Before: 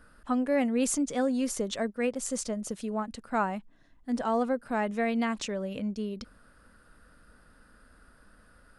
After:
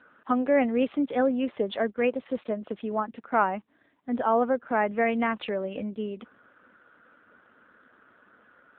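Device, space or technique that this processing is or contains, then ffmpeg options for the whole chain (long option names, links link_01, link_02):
telephone: -af "highpass=280,lowpass=3400,volume=6dB" -ar 8000 -c:a libopencore_amrnb -b:a 7400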